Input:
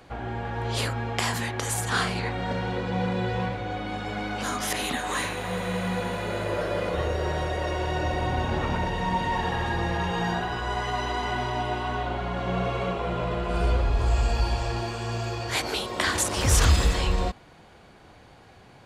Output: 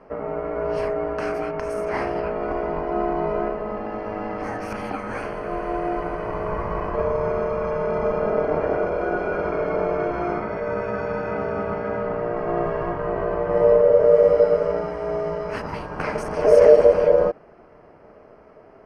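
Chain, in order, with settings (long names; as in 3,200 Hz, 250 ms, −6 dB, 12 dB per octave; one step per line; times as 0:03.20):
low-shelf EQ 190 Hz +9 dB
ring modulation 530 Hz
moving average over 12 samples
level +2.5 dB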